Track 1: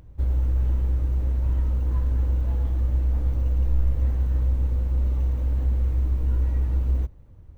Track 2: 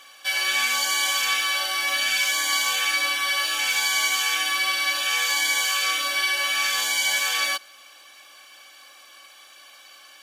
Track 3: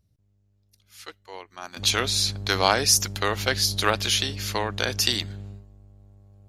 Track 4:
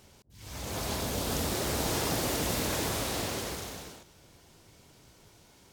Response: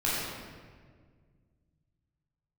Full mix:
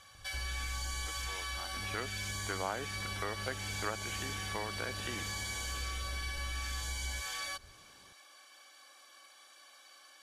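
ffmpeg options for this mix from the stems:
-filter_complex "[0:a]adelay=150,volume=-11.5dB[a];[1:a]equalizer=f=2.7k:t=o:w=0.56:g=-7,asoftclip=type=hard:threshold=-21dB,volume=-8dB[b];[2:a]lowpass=f=2.1k:w=0.5412,lowpass=f=2.1k:w=1.3066,volume=-4dB,asplit=2[c][d];[3:a]acompressor=threshold=-37dB:ratio=6,adelay=2400,volume=-6dB[e];[d]apad=whole_len=340516[f];[a][f]sidechaincompress=threshold=-49dB:ratio=8:attack=16:release=220[g];[g][b][c][e]amix=inputs=4:normalize=0,lowpass=f=12k:w=0.5412,lowpass=f=12k:w=1.3066,acompressor=threshold=-41dB:ratio=2"

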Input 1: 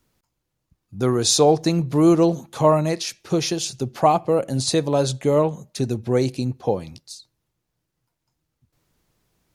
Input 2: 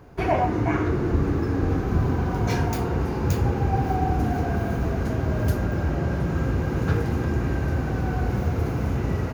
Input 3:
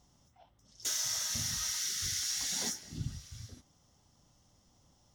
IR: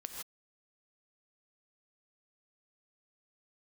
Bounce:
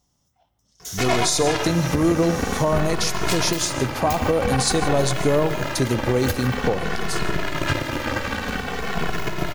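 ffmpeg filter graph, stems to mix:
-filter_complex "[0:a]agate=range=-33dB:threshold=-43dB:ratio=3:detection=peak,volume=2dB,asplit=2[a][b];[b]volume=-7dB[c];[1:a]equalizer=f=2.7k:w=0.46:g=11.5,aeval=exprs='0.473*(cos(1*acos(clip(val(0)/0.473,-1,1)))-cos(1*PI/2))+0.106*(cos(7*acos(clip(val(0)/0.473,-1,1)))-cos(7*PI/2))+0.0531*(cos(8*acos(clip(val(0)/0.473,-1,1)))-cos(8*PI/2))':c=same,asplit=2[d][e];[e]adelay=2.3,afreqshift=-0.49[f];[d][f]amix=inputs=2:normalize=1,adelay=800,volume=2dB,asplit=2[g][h];[h]volume=-6dB[i];[2:a]volume=-5dB,asplit=2[j][k];[k]volume=-9dB[l];[a][j]amix=inputs=2:normalize=0,acompressor=threshold=-14dB:ratio=6,volume=0dB[m];[3:a]atrim=start_sample=2205[n];[c][i][l]amix=inputs=3:normalize=0[o];[o][n]afir=irnorm=-1:irlink=0[p];[g][m][p]amix=inputs=3:normalize=0,highshelf=f=9k:g=9.5,alimiter=limit=-9.5dB:level=0:latency=1:release=282"

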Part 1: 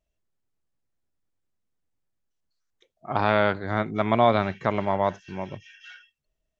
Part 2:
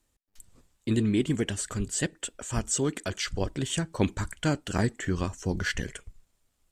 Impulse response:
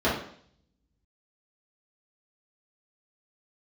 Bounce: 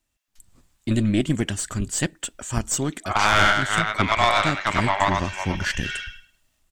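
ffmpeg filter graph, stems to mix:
-filter_complex "[0:a]highpass=1.3k,aeval=exprs='0.251*sin(PI/2*1.78*val(0)/0.251)':c=same,volume=1.5dB,asplit=2[a][b];[b]volume=-3.5dB[c];[1:a]volume=0dB[d];[c]aecho=0:1:102|204|306|408:1|0.23|0.0529|0.0122[e];[a][d][e]amix=inputs=3:normalize=0,equalizer=f=460:t=o:w=0.38:g=-8,dynaudnorm=f=140:g=7:m=8.5dB,aeval=exprs='(tanh(1.78*val(0)+0.7)-tanh(0.7))/1.78':c=same"

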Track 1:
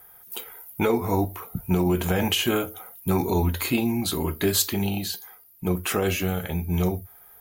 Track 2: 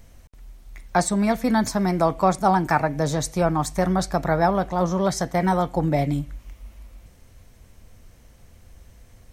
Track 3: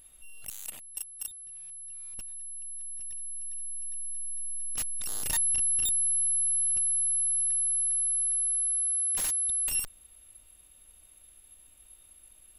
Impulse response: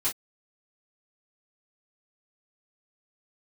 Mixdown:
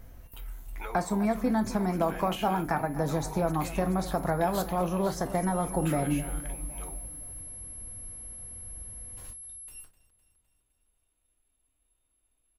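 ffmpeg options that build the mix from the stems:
-filter_complex "[0:a]highpass=1.1k,equalizer=f=5.9k:w=0.46:g=-6,volume=-5dB[a];[1:a]acompressor=threshold=-25dB:ratio=3,volume=-1.5dB,asplit=3[b][c][d];[c]volume=-13dB[e];[d]volume=-14dB[f];[2:a]volume=-18.5dB,asplit=3[g][h][i];[h]volume=-4dB[j];[i]volume=-12dB[k];[3:a]atrim=start_sample=2205[l];[e][j]amix=inputs=2:normalize=0[m];[m][l]afir=irnorm=-1:irlink=0[n];[f][k]amix=inputs=2:normalize=0,aecho=0:1:255|510|765|1020|1275|1530|1785|2040|2295:1|0.59|0.348|0.205|0.121|0.0715|0.0422|0.0249|0.0147[o];[a][b][g][n][o]amix=inputs=5:normalize=0,highshelf=f=2.2k:g=-9.5"

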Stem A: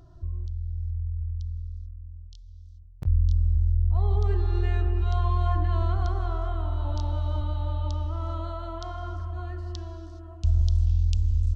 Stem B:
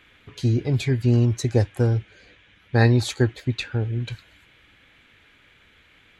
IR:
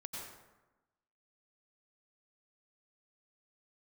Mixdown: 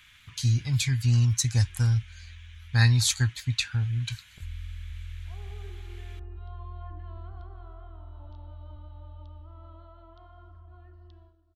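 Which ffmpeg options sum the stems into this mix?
-filter_complex "[0:a]lowpass=f=3.6k:w=0.5412,lowpass=f=3.6k:w=1.3066,agate=range=-10dB:threshold=-36dB:ratio=16:detection=peak,adelay=1350,volume=-16.5dB[a];[1:a]firequalizer=gain_entry='entry(110,0);entry(390,-26);entry(1000,-3);entry(5900,10)':delay=0.05:min_phase=1,volume=-1dB[b];[a][b]amix=inputs=2:normalize=0"

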